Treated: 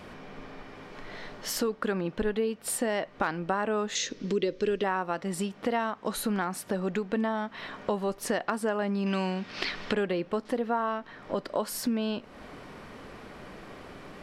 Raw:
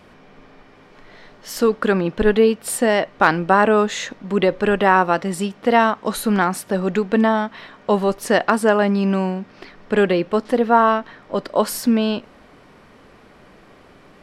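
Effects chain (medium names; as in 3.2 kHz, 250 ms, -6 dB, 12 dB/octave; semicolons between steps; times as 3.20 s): 3.95–4.84 s: FFT filter 200 Hz 0 dB, 430 Hz +7 dB, 750 Hz -13 dB, 5.9 kHz +12 dB, 9.4 kHz -4 dB; compression 3:1, threshold -34 dBFS, peak gain reduction 18.5 dB; 9.06–9.93 s: peaking EQ 3.9 kHz +13 dB 2.5 oct; trim +2.5 dB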